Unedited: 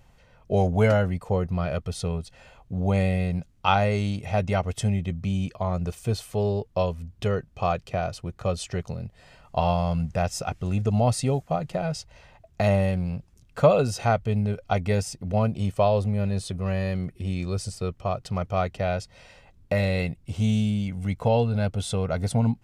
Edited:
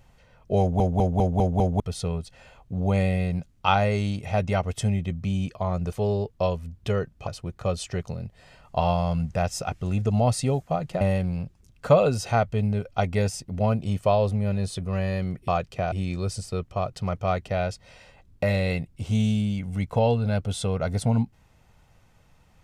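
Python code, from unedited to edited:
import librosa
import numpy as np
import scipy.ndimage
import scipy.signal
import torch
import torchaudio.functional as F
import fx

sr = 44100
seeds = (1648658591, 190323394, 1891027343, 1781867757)

y = fx.edit(x, sr, fx.stutter_over(start_s=0.6, slice_s=0.2, count=6),
    fx.cut(start_s=5.93, length_s=0.36),
    fx.move(start_s=7.63, length_s=0.44, to_s=17.21),
    fx.cut(start_s=11.81, length_s=0.93), tone=tone)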